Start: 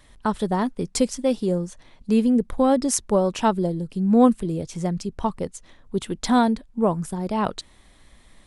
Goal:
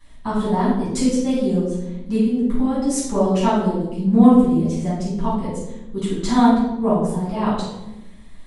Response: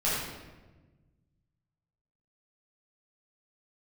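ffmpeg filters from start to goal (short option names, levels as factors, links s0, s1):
-filter_complex "[0:a]asettb=1/sr,asplit=3[s0][s1][s2];[s0]atrim=end=2.164[s3];[s1]atrim=start=2.16:end=2.96,asetpts=PTS-STARTPTS,afade=t=in:d=0.004:c=qsin,afade=t=out:st=0.796:d=0.004:c=qsin,acompressor=threshold=0.0891:ratio=6[s4];[s2]atrim=start=2.956[s5];[s3][s4]acrossfade=d=0.004:c1=hsin:c2=qsin[s6];[s6][s5]acrossfade=d=0.004:c1=qsin:c2=hsin[s7];[1:a]atrim=start_sample=2205,asetrate=66150,aresample=44100[s8];[s7][s8]afir=irnorm=-1:irlink=0,volume=0.531"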